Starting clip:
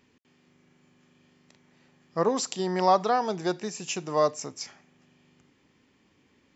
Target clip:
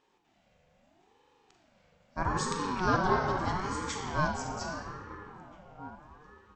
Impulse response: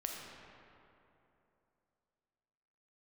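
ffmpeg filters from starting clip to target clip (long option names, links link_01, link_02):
-filter_complex "[0:a]asplit=2[link_01][link_02];[link_02]adelay=1633,volume=-14dB,highshelf=frequency=4000:gain=-36.7[link_03];[link_01][link_03]amix=inputs=2:normalize=0[link_04];[1:a]atrim=start_sample=2205[link_05];[link_04][link_05]afir=irnorm=-1:irlink=0,aeval=exprs='val(0)*sin(2*PI*500*n/s+500*0.35/0.78*sin(2*PI*0.78*n/s))':channel_layout=same,volume=-1.5dB"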